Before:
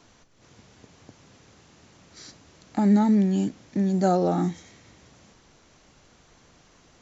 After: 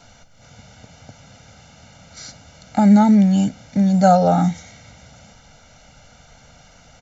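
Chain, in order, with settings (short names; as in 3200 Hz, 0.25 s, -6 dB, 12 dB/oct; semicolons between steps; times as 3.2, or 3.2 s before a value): comb 1.4 ms, depth 98%; gain +5.5 dB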